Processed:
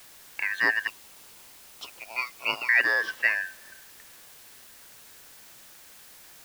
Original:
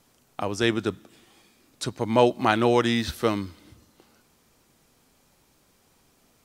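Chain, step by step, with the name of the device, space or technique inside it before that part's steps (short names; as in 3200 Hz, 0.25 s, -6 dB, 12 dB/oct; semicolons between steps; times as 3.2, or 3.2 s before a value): 0.87–2.69 inverse Chebyshev high-pass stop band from 300 Hz, stop band 60 dB; split-band scrambled radio (four-band scrambler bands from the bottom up 2143; BPF 380–3000 Hz; white noise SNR 19 dB)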